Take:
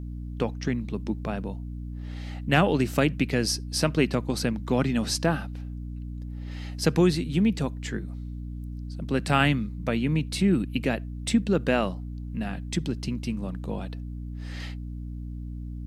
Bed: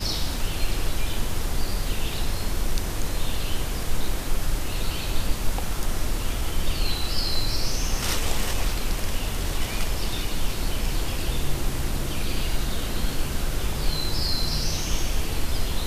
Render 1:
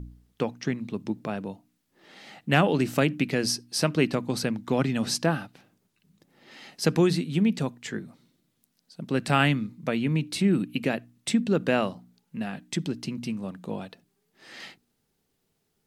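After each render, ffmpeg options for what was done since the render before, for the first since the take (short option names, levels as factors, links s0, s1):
-af "bandreject=f=60:t=h:w=4,bandreject=f=120:t=h:w=4,bandreject=f=180:t=h:w=4,bandreject=f=240:t=h:w=4,bandreject=f=300:t=h:w=4"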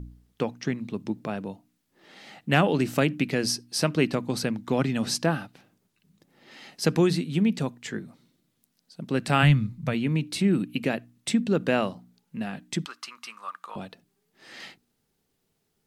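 -filter_complex "[0:a]asplit=3[s0][s1][s2];[s0]afade=t=out:st=9.42:d=0.02[s3];[s1]asubboost=boost=10.5:cutoff=95,afade=t=in:st=9.42:d=0.02,afade=t=out:st=9.93:d=0.02[s4];[s2]afade=t=in:st=9.93:d=0.02[s5];[s3][s4][s5]amix=inputs=3:normalize=0,asettb=1/sr,asplit=3[s6][s7][s8];[s6]atrim=end=12.854[s9];[s7]atrim=start=12.85:end=13.76,asetpts=PTS-STARTPTS,afade=t=in:d=0.004:c=qsin,afade=t=out:st=0.906:d=0.004:c=qsin,highpass=f=1200:t=q:w=7.7[s10];[s8]atrim=start=13.756[s11];[s9][s10]acrossfade=d=0.004:c1=hsin:c2=qsin[s12];[s12][s11]acrossfade=d=0.004:c1=qsin:c2=hsin"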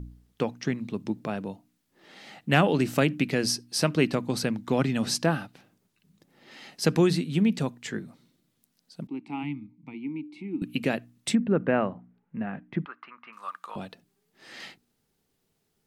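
-filter_complex "[0:a]asettb=1/sr,asplit=3[s0][s1][s2];[s0]atrim=end=9.074[s3];[s1]atrim=start=9.07:end=10.62,asetpts=PTS-STARTPTS,afade=t=in:d=0.004:c=qsin,afade=t=out:st=1.546:d=0.004:c=qsin,asplit=3[s4][s5][s6];[s4]bandpass=f=300:t=q:w=8,volume=1[s7];[s5]bandpass=f=870:t=q:w=8,volume=0.501[s8];[s6]bandpass=f=2240:t=q:w=8,volume=0.355[s9];[s7][s8][s9]amix=inputs=3:normalize=0[s10];[s2]atrim=start=10.616[s11];[s3][s10]acrossfade=d=0.004:c1=hsin:c2=qsin[s12];[s12][s11]acrossfade=d=0.004:c1=qsin:c2=hsin,asettb=1/sr,asplit=3[s13][s14][s15];[s13]atrim=end=11.354[s16];[s14]atrim=start=11.35:end=13.33,asetpts=PTS-STARTPTS,afade=t=in:d=0.004:c=qsin,afade=t=out:st=1.976:d=0.004:c=qsin,lowpass=f=2100:w=0.5412,lowpass=f=2100:w=1.3066[s17];[s15]atrim=start=13.326[s18];[s16][s17]acrossfade=d=0.004:c1=hsin:c2=qsin[s19];[s19][s18]acrossfade=d=0.004:c1=qsin:c2=hsin"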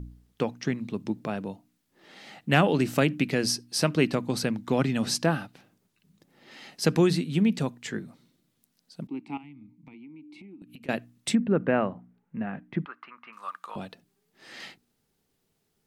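-filter_complex "[0:a]asettb=1/sr,asplit=3[s0][s1][s2];[s0]atrim=end=9.374[s3];[s1]atrim=start=9.37:end=10.89,asetpts=PTS-STARTPTS,afade=t=in:d=0.004:c=qsin,afade=t=out:st=1.516:d=0.004:c=qsin,acompressor=threshold=0.00631:ratio=8:attack=3.2:release=140:knee=1:detection=peak[s4];[s2]atrim=start=10.886[s5];[s3][s4]acrossfade=d=0.004:c1=hsin:c2=qsin[s6];[s6][s5]acrossfade=d=0.004:c1=qsin:c2=hsin"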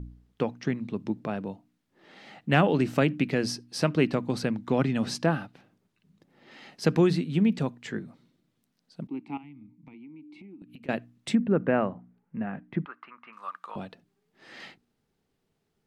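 -af "lowpass=f=2800:p=1"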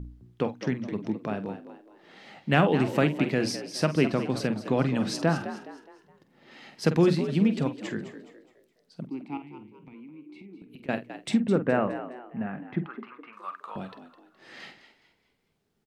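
-filter_complex "[0:a]asplit=2[s0][s1];[s1]adelay=47,volume=0.266[s2];[s0][s2]amix=inputs=2:normalize=0,asplit=5[s3][s4][s5][s6][s7];[s4]adelay=209,afreqshift=61,volume=0.251[s8];[s5]adelay=418,afreqshift=122,volume=0.0955[s9];[s6]adelay=627,afreqshift=183,volume=0.0363[s10];[s7]adelay=836,afreqshift=244,volume=0.0138[s11];[s3][s8][s9][s10][s11]amix=inputs=5:normalize=0"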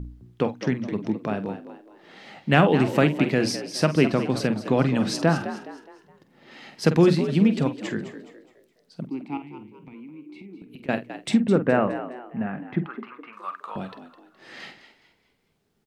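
-af "volume=1.58"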